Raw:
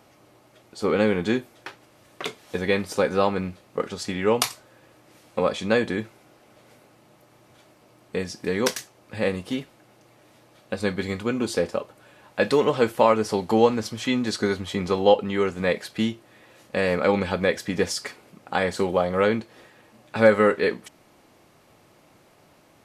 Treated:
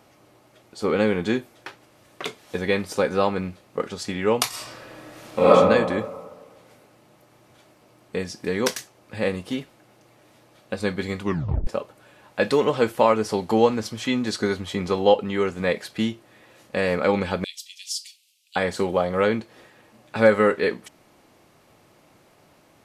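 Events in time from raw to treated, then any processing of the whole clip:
4.49–5.48 reverb throw, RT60 1.5 s, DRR -11 dB
11.21 tape stop 0.46 s
17.44–18.56 steep high-pass 2800 Hz 48 dB/oct

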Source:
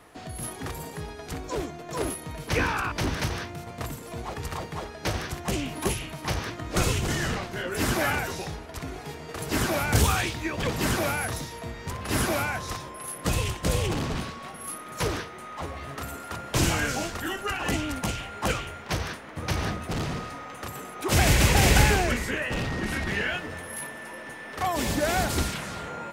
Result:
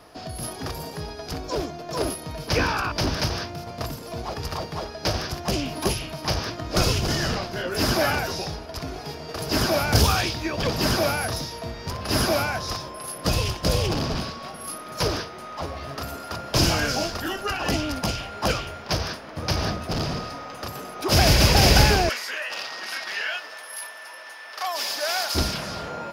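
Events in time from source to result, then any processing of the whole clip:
22.09–25.35 HPF 1000 Hz
whole clip: thirty-one-band EQ 630 Hz +5 dB, 2000 Hz -5 dB, 5000 Hz +12 dB, 8000 Hz -10 dB; gain +2.5 dB

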